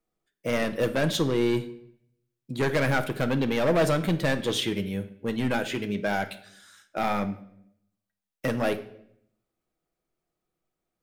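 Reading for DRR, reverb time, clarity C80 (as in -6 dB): 7.0 dB, 0.70 s, 17.0 dB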